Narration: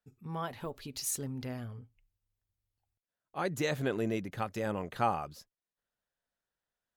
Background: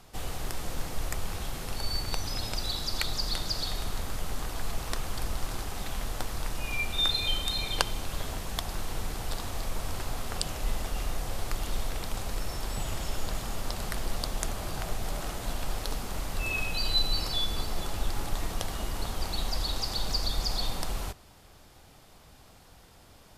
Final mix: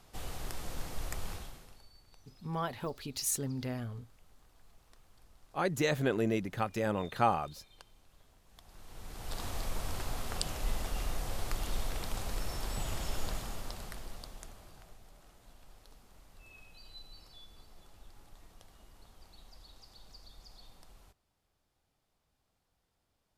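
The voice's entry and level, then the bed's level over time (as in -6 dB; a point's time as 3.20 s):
2.20 s, +2.0 dB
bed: 1.32 s -6 dB
1.92 s -29.5 dB
8.42 s -29.5 dB
9.43 s -3.5 dB
13.26 s -3.5 dB
15.10 s -25 dB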